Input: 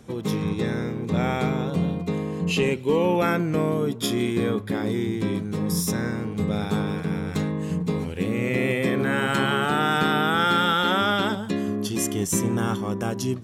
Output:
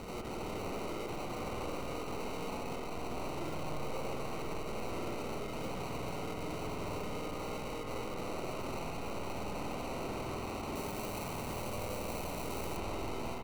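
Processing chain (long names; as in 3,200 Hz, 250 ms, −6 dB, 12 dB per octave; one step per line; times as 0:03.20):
upward compression, threshold −29 dBFS
Bessel high-pass filter 510 Hz, order 8
notch comb filter 1,400 Hz
single-tap delay 929 ms −17.5 dB
tube saturation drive 31 dB, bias 0.35
parametric band 3,600 Hz +14.5 dB 0.63 octaves
sample-rate reduction 1,700 Hz, jitter 0%
wave folding −38 dBFS
0:10.75–0:12.77: high-shelf EQ 7,800 Hz +11.5 dB
spring reverb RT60 3.4 s, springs 49 ms, chirp 70 ms, DRR 1 dB
highs frequency-modulated by the lows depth 0.1 ms
level +1 dB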